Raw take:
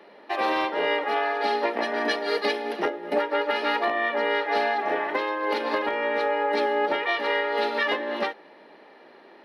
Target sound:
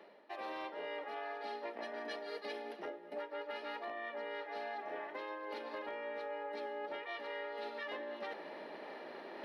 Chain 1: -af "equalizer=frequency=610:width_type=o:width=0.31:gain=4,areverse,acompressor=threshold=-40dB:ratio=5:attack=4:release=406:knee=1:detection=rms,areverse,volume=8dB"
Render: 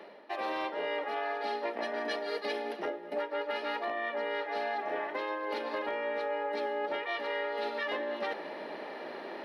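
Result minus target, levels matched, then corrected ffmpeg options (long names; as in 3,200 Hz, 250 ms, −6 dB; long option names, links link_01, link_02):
downward compressor: peak gain reduction −9 dB
-af "equalizer=frequency=610:width_type=o:width=0.31:gain=4,areverse,acompressor=threshold=-51dB:ratio=5:attack=4:release=406:knee=1:detection=rms,areverse,volume=8dB"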